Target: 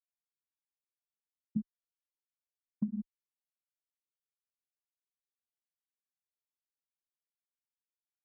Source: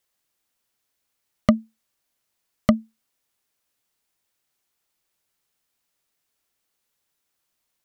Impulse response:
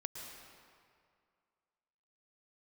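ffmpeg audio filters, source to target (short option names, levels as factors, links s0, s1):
-filter_complex "[0:a]asetrate=41983,aresample=44100,aecho=1:1:58.31|288.6:0.355|0.282[s0];[1:a]atrim=start_sample=2205,asetrate=52920,aresample=44100[s1];[s0][s1]afir=irnorm=-1:irlink=0,flanger=delay=4.7:depth=3.7:regen=-41:speed=0.39:shape=sinusoidal,equalizer=f=600:t=o:w=1.8:g=-3,afftfilt=real='re*gte(hypot(re,im),0.355)':imag='im*gte(hypot(re,im),0.355)':win_size=1024:overlap=0.75,equalizer=f=130:t=o:w=2.1:g=-10,acompressor=threshold=0.00708:ratio=3,asplit=2[s2][s3];[s3]afreqshift=-0.8[s4];[s2][s4]amix=inputs=2:normalize=1,volume=3.55"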